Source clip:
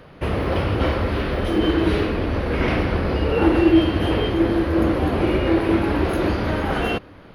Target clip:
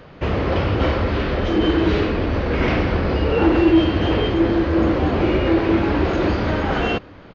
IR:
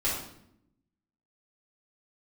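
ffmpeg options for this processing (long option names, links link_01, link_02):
-af "aresample=16000,aresample=44100,aeval=exprs='0.631*(cos(1*acos(clip(val(0)/0.631,-1,1)))-cos(1*PI/2))+0.0355*(cos(5*acos(clip(val(0)/0.631,-1,1)))-cos(5*PI/2))':channel_layout=same"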